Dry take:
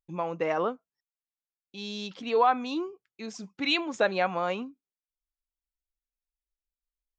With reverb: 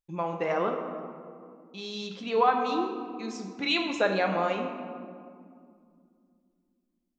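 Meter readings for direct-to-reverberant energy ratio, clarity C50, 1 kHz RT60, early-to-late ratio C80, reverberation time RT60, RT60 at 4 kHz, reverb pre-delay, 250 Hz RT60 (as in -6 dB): 3.0 dB, 5.5 dB, 2.2 s, 7.0 dB, 2.3 s, 1.1 s, 5 ms, 3.4 s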